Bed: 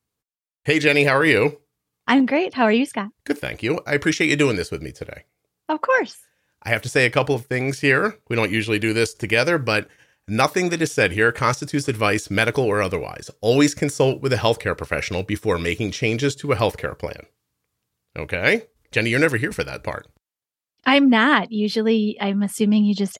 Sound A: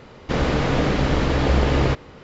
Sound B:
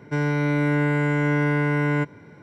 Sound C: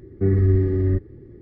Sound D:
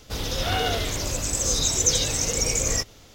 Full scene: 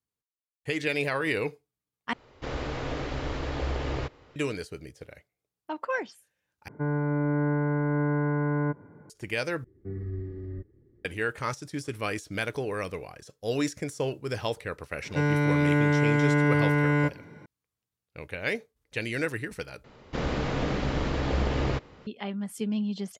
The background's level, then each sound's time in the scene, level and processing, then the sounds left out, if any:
bed −12 dB
0:02.13: overwrite with A −11.5 dB + parametric band 190 Hz −14 dB 0.39 octaves
0:06.68: overwrite with B −4.5 dB + low-pass filter 1,400 Hz 24 dB per octave
0:09.64: overwrite with C −17.5 dB
0:15.04: mix in B −1.5 dB
0:19.84: overwrite with A −8.5 dB
not used: D

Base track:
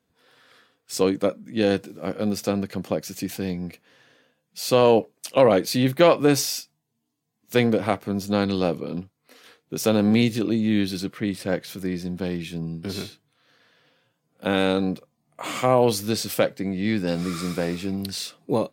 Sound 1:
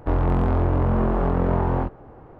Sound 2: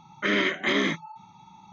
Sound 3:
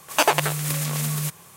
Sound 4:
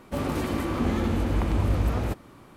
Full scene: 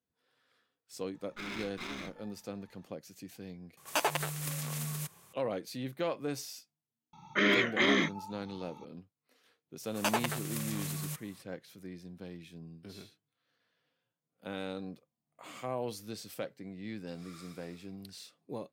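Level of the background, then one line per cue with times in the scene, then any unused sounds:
base track −18 dB
0:01.14: mix in 2 −15.5 dB + lower of the sound and its delayed copy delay 0.82 ms
0:03.77: overwrite with 3 −11.5 dB + one scale factor per block 7 bits
0:07.13: mix in 2 −2.5 dB + wow of a warped record 78 rpm, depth 100 cents
0:09.86: mix in 3 −12.5 dB
not used: 1, 4

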